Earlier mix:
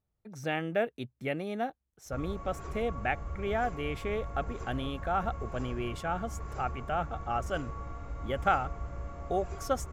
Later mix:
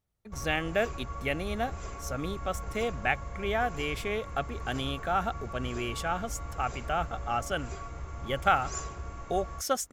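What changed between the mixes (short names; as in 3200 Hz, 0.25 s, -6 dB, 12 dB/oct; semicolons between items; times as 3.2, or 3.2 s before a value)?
background: entry -1.80 s; master: add high shelf 2000 Hz +10 dB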